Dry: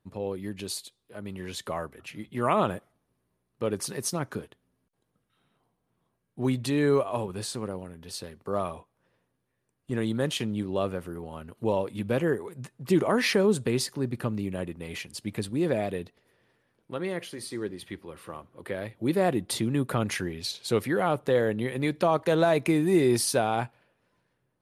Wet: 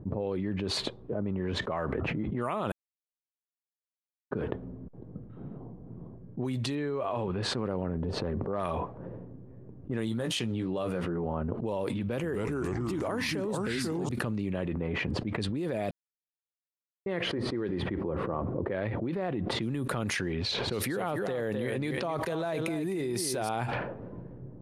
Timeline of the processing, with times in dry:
2.72–4.31 s: mute
6.75–7.43 s: low-pass 3.7 kHz
7.97–8.66 s: transient shaper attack -7 dB, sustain +7 dB
10.06–11.26 s: doubling 17 ms -7 dB
12.00–14.09 s: ever faster or slower copies 238 ms, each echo -3 st, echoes 3
15.91–17.06 s: mute
18.85–19.55 s: compression 5:1, threshold -29 dBFS
20.41–23.49 s: delay 257 ms -10 dB
whole clip: level-controlled noise filter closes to 360 Hz, open at -23.5 dBFS; peak limiter -19.5 dBFS; level flattener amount 100%; trim -7 dB

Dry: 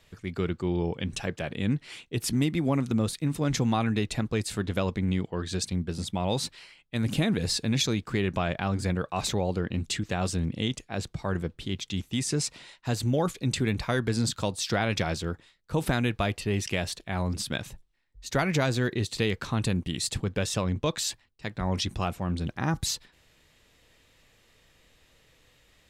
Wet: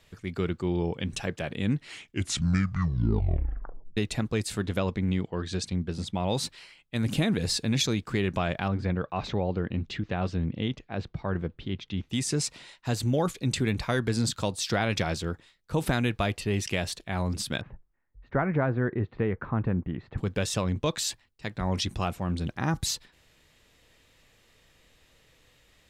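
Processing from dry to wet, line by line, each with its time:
1.80 s: tape stop 2.17 s
4.77–6.35 s: distance through air 55 m
8.68–12.10 s: distance through air 250 m
17.61–20.18 s: low-pass 1.7 kHz 24 dB/octave

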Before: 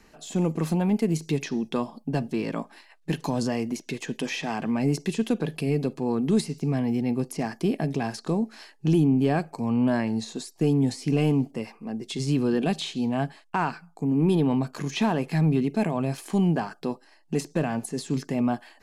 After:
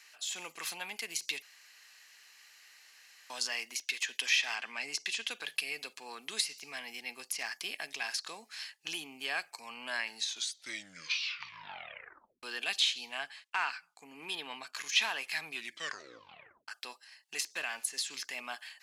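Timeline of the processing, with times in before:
1.42–3.30 s: room tone
4.55–5.31 s: low-pass 8.1 kHz
10.18 s: tape stop 2.25 s
13.18–14.79 s: treble shelf 7.5 kHz -8 dB
15.52 s: tape stop 1.16 s
whole clip: Chebyshev high-pass 2.3 kHz, order 2; dynamic bell 8.2 kHz, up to -4 dB, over -57 dBFS, Q 2.2; trim +5.5 dB

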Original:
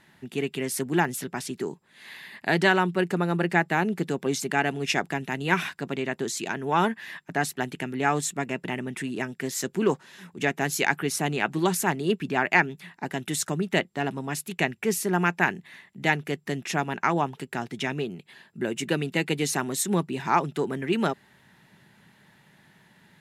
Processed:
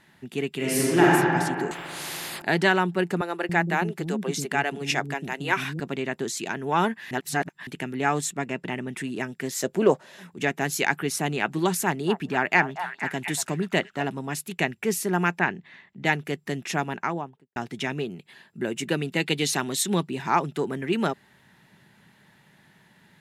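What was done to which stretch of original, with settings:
0.56–1.07 s: reverb throw, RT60 2.4 s, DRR -7 dB
1.71–2.42 s: spectrum-flattening compressor 4:1
3.21–5.80 s: bands offset in time highs, lows 280 ms, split 310 Hz
7.11–7.67 s: reverse
8.31–8.89 s: treble shelf 11 kHz -9.5 dB
9.61–10.23 s: peaking EQ 600 Hz +13.5 dB 0.64 oct
11.81–14.04 s: repeats whose band climbs or falls 237 ms, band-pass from 920 Hz, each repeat 0.7 oct, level -6 dB
15.39–16.05 s: distance through air 130 m
16.81–17.56 s: studio fade out
19.20–20.08 s: peaking EQ 3.6 kHz +8 dB 0.96 oct

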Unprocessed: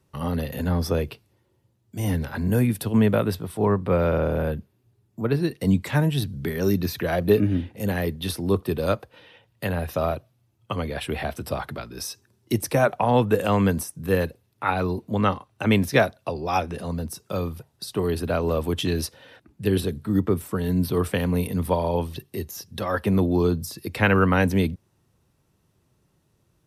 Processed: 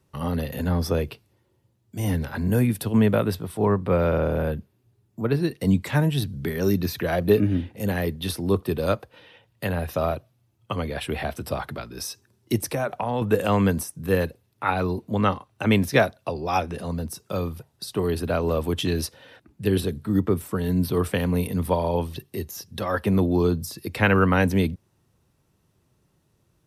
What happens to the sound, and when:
12.64–13.22 s: compression 3:1, threshold -23 dBFS

